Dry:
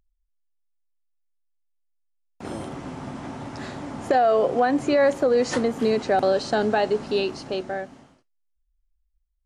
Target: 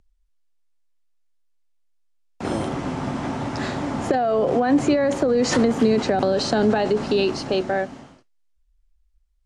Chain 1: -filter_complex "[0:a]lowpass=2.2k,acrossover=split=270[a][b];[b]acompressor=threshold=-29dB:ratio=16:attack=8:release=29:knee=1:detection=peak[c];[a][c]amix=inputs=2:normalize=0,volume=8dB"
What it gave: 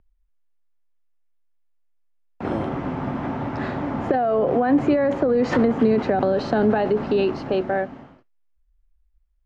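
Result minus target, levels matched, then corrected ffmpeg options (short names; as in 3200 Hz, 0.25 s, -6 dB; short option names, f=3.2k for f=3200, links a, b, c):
8000 Hz band -19.0 dB
-filter_complex "[0:a]lowpass=8.7k,acrossover=split=270[a][b];[b]acompressor=threshold=-29dB:ratio=16:attack=8:release=29:knee=1:detection=peak[c];[a][c]amix=inputs=2:normalize=0,volume=8dB"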